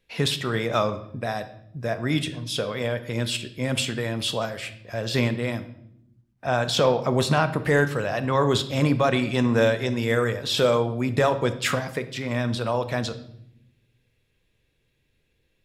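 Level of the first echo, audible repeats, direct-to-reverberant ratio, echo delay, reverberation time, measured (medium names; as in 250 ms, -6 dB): no echo, no echo, 9.5 dB, no echo, 0.75 s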